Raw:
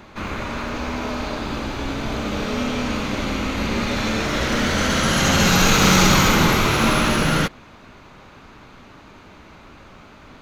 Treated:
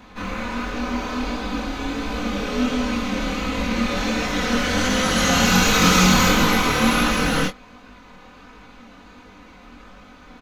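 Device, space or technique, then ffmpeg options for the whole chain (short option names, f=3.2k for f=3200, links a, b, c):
double-tracked vocal: -filter_complex "[0:a]asplit=2[a][b];[b]adelay=21,volume=-9dB[c];[a][c]amix=inputs=2:normalize=0,flanger=delay=19:depth=7.8:speed=1.4,aecho=1:1:4:0.72"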